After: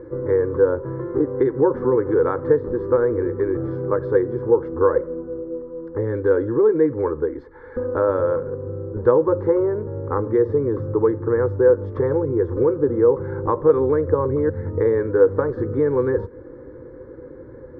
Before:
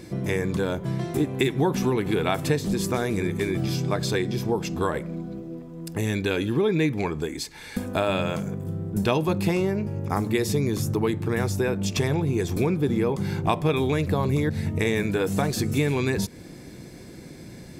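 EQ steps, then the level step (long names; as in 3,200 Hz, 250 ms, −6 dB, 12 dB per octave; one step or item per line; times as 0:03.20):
low-pass filter 1,600 Hz 24 dB per octave
parametric band 510 Hz +14.5 dB 0.26 octaves
phaser with its sweep stopped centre 690 Hz, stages 6
+4.5 dB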